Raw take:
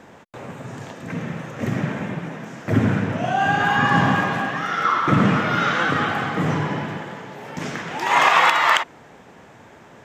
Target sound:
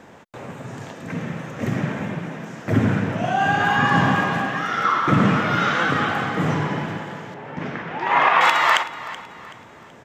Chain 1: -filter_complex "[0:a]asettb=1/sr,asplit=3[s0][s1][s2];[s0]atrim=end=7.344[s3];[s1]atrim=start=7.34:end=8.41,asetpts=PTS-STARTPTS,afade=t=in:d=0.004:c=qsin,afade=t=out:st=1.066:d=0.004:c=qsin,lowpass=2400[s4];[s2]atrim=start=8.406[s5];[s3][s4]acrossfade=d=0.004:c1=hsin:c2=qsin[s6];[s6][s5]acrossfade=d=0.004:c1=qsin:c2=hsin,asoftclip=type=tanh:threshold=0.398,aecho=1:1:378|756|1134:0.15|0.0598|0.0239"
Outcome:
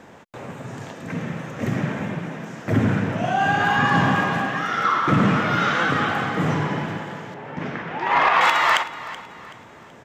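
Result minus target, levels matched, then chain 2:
saturation: distortion +14 dB
-filter_complex "[0:a]asettb=1/sr,asplit=3[s0][s1][s2];[s0]atrim=end=7.344[s3];[s1]atrim=start=7.34:end=8.41,asetpts=PTS-STARTPTS,afade=t=in:d=0.004:c=qsin,afade=t=out:st=1.066:d=0.004:c=qsin,lowpass=2400[s4];[s2]atrim=start=8.406[s5];[s3][s4]acrossfade=d=0.004:c1=hsin:c2=qsin[s6];[s6][s5]acrossfade=d=0.004:c1=qsin:c2=hsin,asoftclip=type=tanh:threshold=1,aecho=1:1:378|756|1134:0.15|0.0598|0.0239"

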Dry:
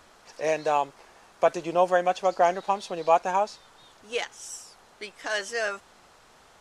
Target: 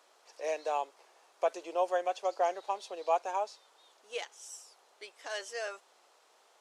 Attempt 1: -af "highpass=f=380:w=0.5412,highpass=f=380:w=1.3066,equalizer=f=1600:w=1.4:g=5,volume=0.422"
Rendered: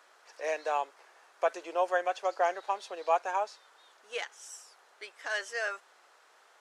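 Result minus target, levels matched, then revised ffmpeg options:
2 kHz band +6.0 dB
-af "highpass=f=380:w=0.5412,highpass=f=380:w=1.3066,equalizer=f=1600:w=1.4:g=-4.5,volume=0.422"

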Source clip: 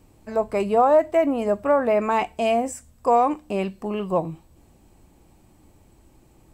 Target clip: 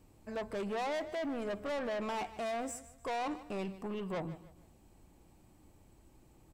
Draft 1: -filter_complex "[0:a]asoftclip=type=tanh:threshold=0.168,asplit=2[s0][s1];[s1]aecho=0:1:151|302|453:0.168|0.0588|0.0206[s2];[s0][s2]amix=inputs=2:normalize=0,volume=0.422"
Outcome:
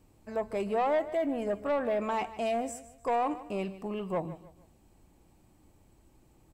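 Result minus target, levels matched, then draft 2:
saturation: distortion -9 dB
-filter_complex "[0:a]asoftclip=type=tanh:threshold=0.0473,asplit=2[s0][s1];[s1]aecho=0:1:151|302|453:0.168|0.0588|0.0206[s2];[s0][s2]amix=inputs=2:normalize=0,volume=0.422"

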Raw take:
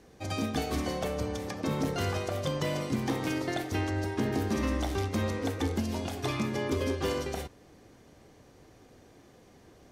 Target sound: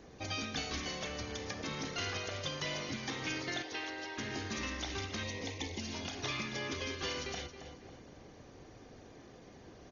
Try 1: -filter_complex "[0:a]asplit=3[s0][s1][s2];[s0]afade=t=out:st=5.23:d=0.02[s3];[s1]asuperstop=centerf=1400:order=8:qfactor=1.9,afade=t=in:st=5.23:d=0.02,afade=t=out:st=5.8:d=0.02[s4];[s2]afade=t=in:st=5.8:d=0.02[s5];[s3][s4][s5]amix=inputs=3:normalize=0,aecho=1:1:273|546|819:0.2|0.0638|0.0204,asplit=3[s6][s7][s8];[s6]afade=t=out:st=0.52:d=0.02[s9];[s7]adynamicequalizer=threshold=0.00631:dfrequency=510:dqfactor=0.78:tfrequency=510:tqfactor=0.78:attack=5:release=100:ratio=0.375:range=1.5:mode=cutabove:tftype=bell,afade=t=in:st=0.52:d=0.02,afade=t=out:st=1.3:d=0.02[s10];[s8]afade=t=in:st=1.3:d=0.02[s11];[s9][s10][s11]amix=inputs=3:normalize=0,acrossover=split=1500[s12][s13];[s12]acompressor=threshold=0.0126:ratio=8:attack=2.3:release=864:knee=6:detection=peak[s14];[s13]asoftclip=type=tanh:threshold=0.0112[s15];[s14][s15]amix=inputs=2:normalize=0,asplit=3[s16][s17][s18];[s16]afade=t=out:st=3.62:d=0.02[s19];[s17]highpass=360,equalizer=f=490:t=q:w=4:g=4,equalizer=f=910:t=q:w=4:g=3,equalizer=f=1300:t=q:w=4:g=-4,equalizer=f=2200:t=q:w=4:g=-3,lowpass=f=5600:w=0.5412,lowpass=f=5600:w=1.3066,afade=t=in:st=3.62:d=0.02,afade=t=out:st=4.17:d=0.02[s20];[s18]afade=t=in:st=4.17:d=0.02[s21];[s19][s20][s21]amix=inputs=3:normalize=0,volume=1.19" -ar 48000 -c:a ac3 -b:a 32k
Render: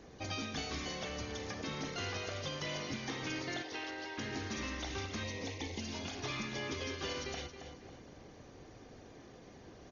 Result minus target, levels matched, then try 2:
saturation: distortion +15 dB
-filter_complex "[0:a]asplit=3[s0][s1][s2];[s0]afade=t=out:st=5.23:d=0.02[s3];[s1]asuperstop=centerf=1400:order=8:qfactor=1.9,afade=t=in:st=5.23:d=0.02,afade=t=out:st=5.8:d=0.02[s4];[s2]afade=t=in:st=5.8:d=0.02[s5];[s3][s4][s5]amix=inputs=3:normalize=0,aecho=1:1:273|546|819:0.2|0.0638|0.0204,asplit=3[s6][s7][s8];[s6]afade=t=out:st=0.52:d=0.02[s9];[s7]adynamicequalizer=threshold=0.00631:dfrequency=510:dqfactor=0.78:tfrequency=510:tqfactor=0.78:attack=5:release=100:ratio=0.375:range=1.5:mode=cutabove:tftype=bell,afade=t=in:st=0.52:d=0.02,afade=t=out:st=1.3:d=0.02[s10];[s8]afade=t=in:st=1.3:d=0.02[s11];[s9][s10][s11]amix=inputs=3:normalize=0,acrossover=split=1500[s12][s13];[s12]acompressor=threshold=0.0126:ratio=8:attack=2.3:release=864:knee=6:detection=peak[s14];[s13]asoftclip=type=tanh:threshold=0.0422[s15];[s14][s15]amix=inputs=2:normalize=0,asplit=3[s16][s17][s18];[s16]afade=t=out:st=3.62:d=0.02[s19];[s17]highpass=360,equalizer=f=490:t=q:w=4:g=4,equalizer=f=910:t=q:w=4:g=3,equalizer=f=1300:t=q:w=4:g=-4,equalizer=f=2200:t=q:w=4:g=-3,lowpass=f=5600:w=0.5412,lowpass=f=5600:w=1.3066,afade=t=in:st=3.62:d=0.02,afade=t=out:st=4.17:d=0.02[s20];[s18]afade=t=in:st=4.17:d=0.02[s21];[s19][s20][s21]amix=inputs=3:normalize=0,volume=1.19" -ar 48000 -c:a ac3 -b:a 32k

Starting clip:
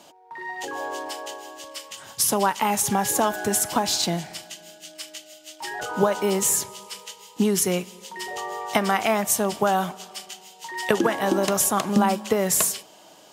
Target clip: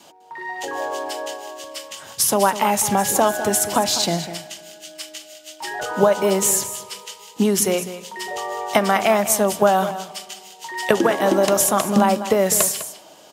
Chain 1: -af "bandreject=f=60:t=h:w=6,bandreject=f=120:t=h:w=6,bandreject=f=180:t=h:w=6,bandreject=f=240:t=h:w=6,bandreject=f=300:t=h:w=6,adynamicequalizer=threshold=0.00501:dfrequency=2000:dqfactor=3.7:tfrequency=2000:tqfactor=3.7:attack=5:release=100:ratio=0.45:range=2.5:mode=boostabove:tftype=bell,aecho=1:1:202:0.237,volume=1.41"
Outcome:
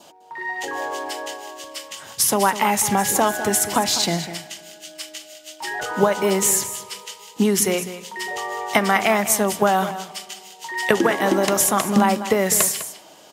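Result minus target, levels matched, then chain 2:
2 kHz band +3.5 dB
-af "bandreject=f=60:t=h:w=6,bandreject=f=120:t=h:w=6,bandreject=f=180:t=h:w=6,bandreject=f=240:t=h:w=6,bandreject=f=300:t=h:w=6,adynamicequalizer=threshold=0.00501:dfrequency=600:dqfactor=3.7:tfrequency=600:tqfactor=3.7:attack=5:release=100:ratio=0.45:range=2.5:mode=boostabove:tftype=bell,aecho=1:1:202:0.237,volume=1.41"

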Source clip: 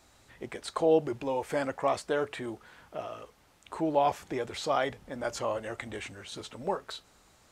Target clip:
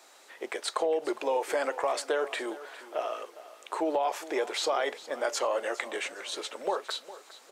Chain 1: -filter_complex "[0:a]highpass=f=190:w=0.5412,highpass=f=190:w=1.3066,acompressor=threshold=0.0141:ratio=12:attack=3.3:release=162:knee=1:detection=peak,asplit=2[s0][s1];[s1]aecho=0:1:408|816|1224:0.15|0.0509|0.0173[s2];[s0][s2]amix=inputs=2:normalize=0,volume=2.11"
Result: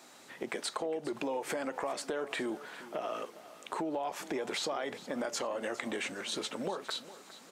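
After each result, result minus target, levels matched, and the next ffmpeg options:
compression: peak gain reduction +8.5 dB; 250 Hz band +6.0 dB
-filter_complex "[0:a]highpass=f=190:w=0.5412,highpass=f=190:w=1.3066,acompressor=threshold=0.0355:ratio=12:attack=3.3:release=162:knee=1:detection=peak,asplit=2[s0][s1];[s1]aecho=0:1:408|816|1224:0.15|0.0509|0.0173[s2];[s0][s2]amix=inputs=2:normalize=0,volume=2.11"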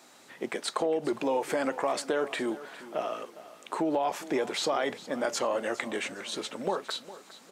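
250 Hz band +6.0 dB
-filter_complex "[0:a]highpass=f=380:w=0.5412,highpass=f=380:w=1.3066,acompressor=threshold=0.0355:ratio=12:attack=3.3:release=162:knee=1:detection=peak,asplit=2[s0][s1];[s1]aecho=0:1:408|816|1224:0.15|0.0509|0.0173[s2];[s0][s2]amix=inputs=2:normalize=0,volume=2.11"

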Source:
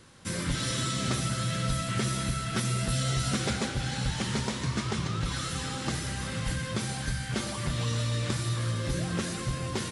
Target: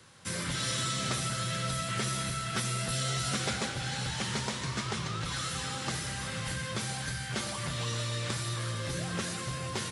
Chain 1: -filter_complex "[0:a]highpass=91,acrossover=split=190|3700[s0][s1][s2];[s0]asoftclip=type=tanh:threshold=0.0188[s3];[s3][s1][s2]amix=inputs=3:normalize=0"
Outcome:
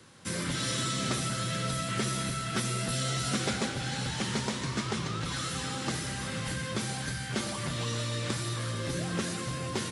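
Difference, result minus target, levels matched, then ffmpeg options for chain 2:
250 Hz band +3.5 dB
-filter_complex "[0:a]highpass=91,equalizer=f=280:w=1.1:g=-7,acrossover=split=190|3700[s0][s1][s2];[s0]asoftclip=type=tanh:threshold=0.0188[s3];[s3][s1][s2]amix=inputs=3:normalize=0"

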